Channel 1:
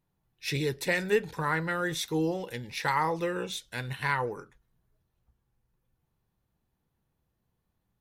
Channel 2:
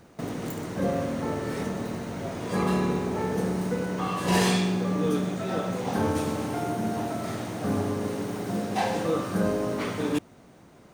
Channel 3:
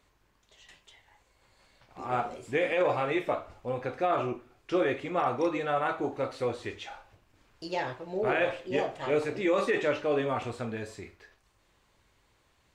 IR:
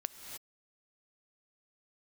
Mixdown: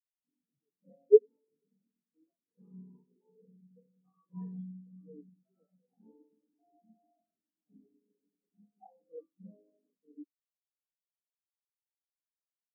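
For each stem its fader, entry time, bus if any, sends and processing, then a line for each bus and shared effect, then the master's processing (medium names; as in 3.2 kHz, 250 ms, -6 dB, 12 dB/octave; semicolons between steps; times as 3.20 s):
+3.0 dB, 0.00 s, no send, echo send -11 dB, spectral contrast expander 2.5:1
+2.0 dB, 0.05 s, no send, echo send -17.5 dB, high-pass 150 Hz 12 dB/octave
-14.0 dB, 0.00 s, no send, no echo send, none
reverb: none
echo: delay 93 ms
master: spectral contrast expander 4:1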